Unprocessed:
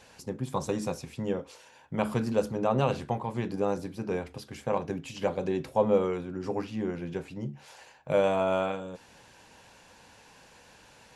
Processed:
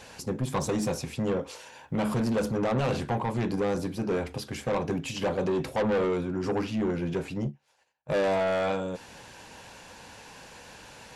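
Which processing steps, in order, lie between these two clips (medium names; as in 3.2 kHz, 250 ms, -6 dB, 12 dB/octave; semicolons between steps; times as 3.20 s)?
in parallel at +1 dB: peak limiter -19 dBFS, peak gain reduction 7 dB; on the sum: saturation -23.5 dBFS, distortion -8 dB; 7.44–8.12 s: upward expansion 2.5:1, over -51 dBFS; trim +1 dB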